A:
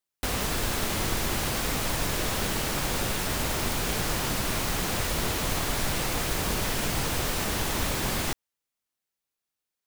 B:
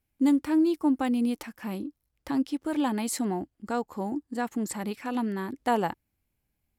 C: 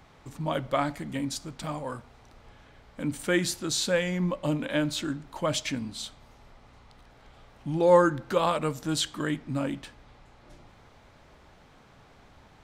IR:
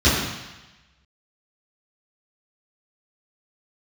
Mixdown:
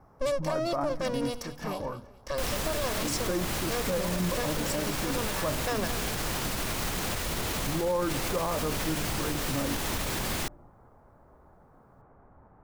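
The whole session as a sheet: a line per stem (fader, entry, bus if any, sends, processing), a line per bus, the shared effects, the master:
+0.5 dB, 2.15 s, no send, no echo send, limiter -22 dBFS, peak gain reduction 7.5 dB
0.0 dB, 0.00 s, no send, echo send -14 dB, minimum comb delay 1.8 ms; bell 5500 Hz +13.5 dB 0.5 oct
-0.5 dB, 0.00 s, no send, no echo send, inverse Chebyshev low-pass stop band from 7100 Hz, stop band 80 dB; notches 50/100/150/200/250/300 Hz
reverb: off
echo: feedback echo 0.214 s, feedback 30%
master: limiter -20 dBFS, peak gain reduction 11.5 dB

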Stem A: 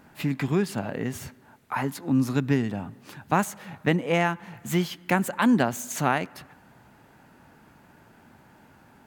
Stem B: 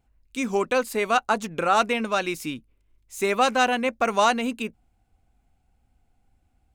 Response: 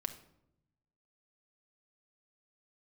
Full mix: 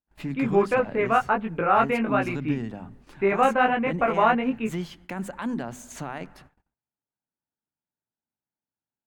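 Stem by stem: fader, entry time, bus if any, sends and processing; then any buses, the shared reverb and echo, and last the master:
-4.0 dB, 0.00 s, no send, high shelf 2000 Hz -5 dB; notches 50/100/150/200/250 Hz; limiter -17.5 dBFS, peak gain reduction 10 dB
+2.5 dB, 0.00 s, send -20 dB, inverse Chebyshev low-pass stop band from 5900 Hz, stop band 50 dB; low shelf 97 Hz +7.5 dB; chorus 1.3 Hz, delay 18 ms, depth 4.4 ms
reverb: on, RT60 0.80 s, pre-delay 5 ms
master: bell 14000 Hz -14 dB 0.25 oct; gate -51 dBFS, range -39 dB

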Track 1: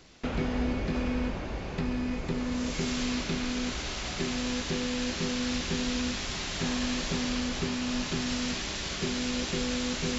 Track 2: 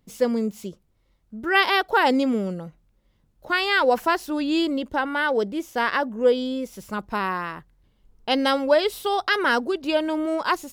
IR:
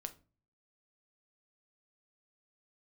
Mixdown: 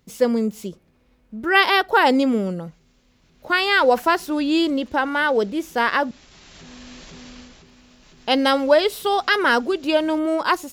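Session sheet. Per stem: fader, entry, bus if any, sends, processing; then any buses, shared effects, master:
3.21 s -17.5 dB -> 3.77 s -6 dB, 0.00 s, send -11.5 dB, limiter -27.5 dBFS, peak gain reduction 10 dB; auto duck -14 dB, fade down 0.30 s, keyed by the second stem
+2.0 dB, 0.00 s, muted 6.11–7.65, send -12.5 dB, HPF 40 Hz 6 dB/oct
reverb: on, RT60 0.35 s, pre-delay 6 ms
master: dry

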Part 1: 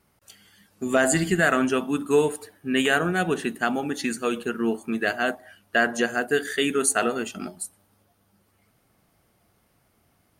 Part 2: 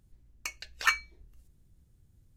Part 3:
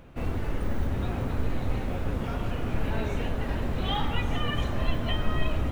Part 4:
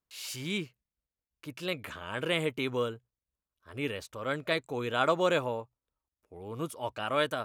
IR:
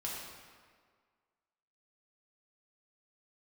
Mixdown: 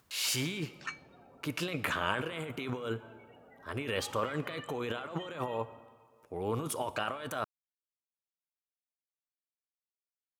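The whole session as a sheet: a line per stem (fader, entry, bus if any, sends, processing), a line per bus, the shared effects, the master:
off
-17.5 dB, 0.00 s, send -23.5 dB, steep low-pass 8900 Hz
-17.0 dB, 0.10 s, send -5.5 dB, loudest bins only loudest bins 32; HPF 1300 Hz 6 dB/oct
+1.0 dB, 0.00 s, send -13.5 dB, negative-ratio compressor -39 dBFS, ratio -1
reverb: on, RT60 1.8 s, pre-delay 3 ms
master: HPF 85 Hz; bell 1300 Hz +3 dB 1.8 oct; upward compressor, threshold -59 dBFS

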